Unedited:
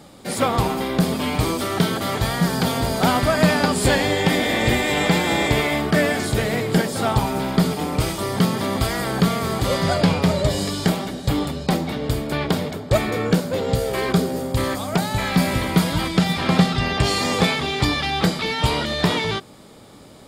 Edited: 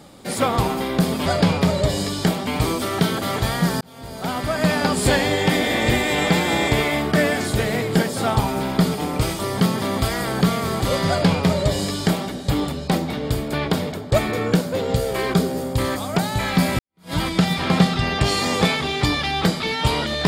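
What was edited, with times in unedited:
2.6–3.78 fade in
9.87–11.08 copy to 1.26
15.58–15.92 fade in exponential

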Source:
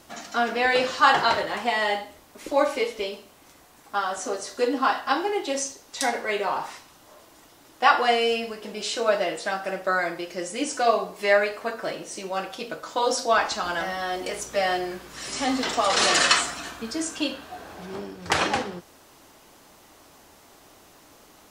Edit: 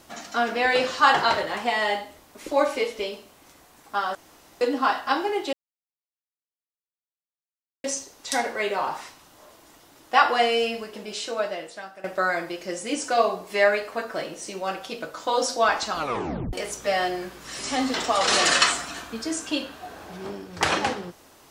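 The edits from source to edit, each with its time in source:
4.15–4.61 room tone
5.53 insert silence 2.31 s
8.46–9.73 fade out, to -16.5 dB
13.64 tape stop 0.58 s

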